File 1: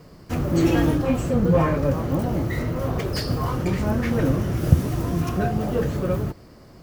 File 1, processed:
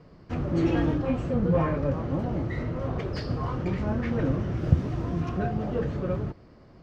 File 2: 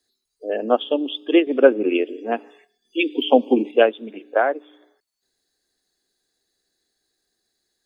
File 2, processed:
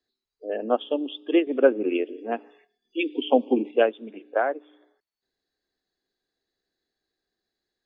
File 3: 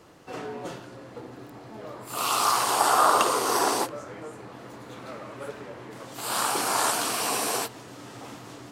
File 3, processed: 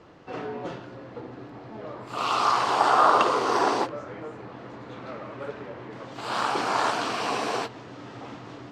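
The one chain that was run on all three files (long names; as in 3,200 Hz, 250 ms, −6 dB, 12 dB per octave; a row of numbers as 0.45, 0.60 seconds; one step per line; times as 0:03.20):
high-frequency loss of the air 170 metres
normalise the peak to −6 dBFS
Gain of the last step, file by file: −5.0, −4.5, +2.5 decibels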